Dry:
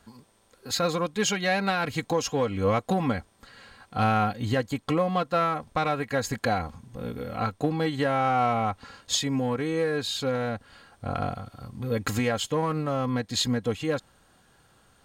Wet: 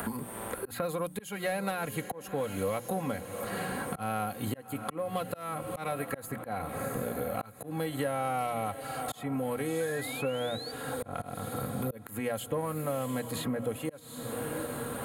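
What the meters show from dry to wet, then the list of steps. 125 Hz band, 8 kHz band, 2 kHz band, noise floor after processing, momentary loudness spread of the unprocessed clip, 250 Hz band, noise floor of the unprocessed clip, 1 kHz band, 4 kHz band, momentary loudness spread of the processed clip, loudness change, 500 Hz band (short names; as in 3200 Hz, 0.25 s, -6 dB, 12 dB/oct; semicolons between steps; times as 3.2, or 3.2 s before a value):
-7.5 dB, -6.0 dB, -7.0 dB, -48 dBFS, 9 LU, -6.5 dB, -62 dBFS, -7.5 dB, -11.5 dB, 6 LU, -7.5 dB, -5.0 dB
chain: HPF 47 Hz 12 dB/oct; resonant high shelf 8000 Hz +14 dB, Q 3; upward compressor, threshold -31 dBFS; on a send: diffused feedback echo 0.709 s, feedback 54%, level -15 dB; on the sum: painted sound rise, 9.8–10.72, 1500–4700 Hz -37 dBFS; in parallel at -10.5 dB: soft clip -16 dBFS, distortion -21 dB; on the sum: notches 60/120/180/240/300 Hz; overloaded stage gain 13 dB; auto swell 0.477 s; dynamic EQ 580 Hz, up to +6 dB, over -42 dBFS, Q 3.2; three-band squash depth 100%; gain -8 dB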